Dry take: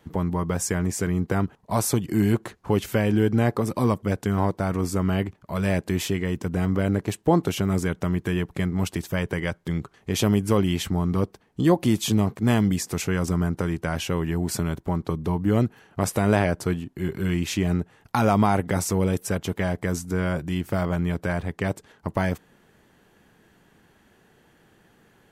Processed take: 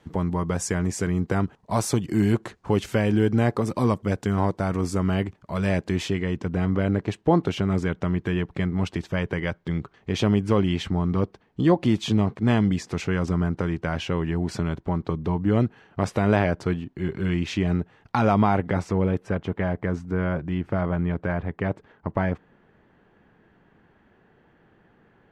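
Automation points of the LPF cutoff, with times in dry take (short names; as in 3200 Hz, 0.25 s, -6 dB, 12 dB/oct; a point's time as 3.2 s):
5.39 s 8000 Hz
6.5 s 4100 Hz
18.27 s 4100 Hz
19.13 s 2100 Hz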